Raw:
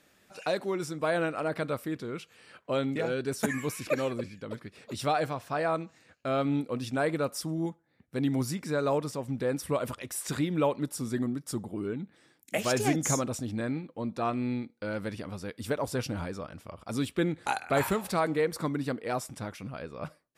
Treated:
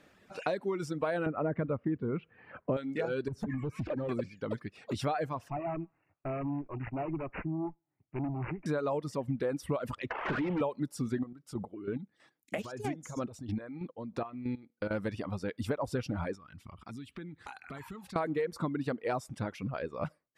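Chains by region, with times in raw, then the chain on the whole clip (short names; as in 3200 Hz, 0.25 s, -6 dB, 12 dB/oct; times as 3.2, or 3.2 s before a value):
1.26–2.77 LPF 2400 Hz 24 dB/oct + low shelf 430 Hz +11.5 dB
3.28–4.09 tilt -4 dB/oct + compressor 12:1, threshold -32 dBFS + hard clip -32 dBFS
5.5–8.66 tube stage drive 32 dB, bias 0.65 + fixed phaser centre 330 Hz, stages 8 + careless resampling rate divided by 8×, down none, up filtered
10.1–10.61 CVSD 16 kbps + compressor 2.5:1, threshold -36 dBFS + overdrive pedal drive 27 dB, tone 2000 Hz, clips at -25 dBFS
11.23–14.91 compressor, threshold -32 dBFS + chopper 3.1 Hz, depth 60%, duty 30%
16.35–18.16 bell 570 Hz -14 dB 0.95 oct + compressor, threshold -45 dBFS
whole clip: LPF 2100 Hz 6 dB/oct; reverb removal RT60 0.89 s; compressor, threshold -34 dBFS; gain +5 dB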